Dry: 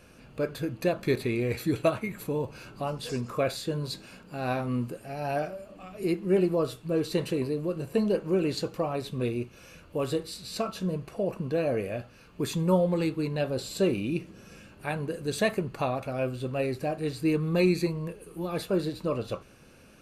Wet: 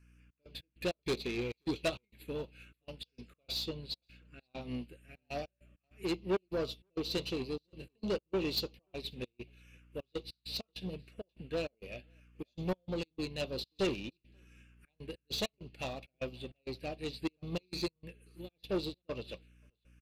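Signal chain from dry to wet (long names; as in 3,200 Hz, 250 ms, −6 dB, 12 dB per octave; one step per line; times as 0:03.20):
meter weighting curve D
mains hum 60 Hz, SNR 12 dB
phaser swept by the level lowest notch 550 Hz, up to 1,700 Hz, full sweep at −25 dBFS
gate pattern "xx.x.x.xxx.xx.xx" 99 BPM −24 dB
soft clipping −26.5 dBFS, distortion −10 dB
0:03.69–0:04.61: high-frequency loss of the air 58 metres
single-tap delay 532 ms −22.5 dB
expander for the loud parts 2.5 to 1, over −46 dBFS
level +1 dB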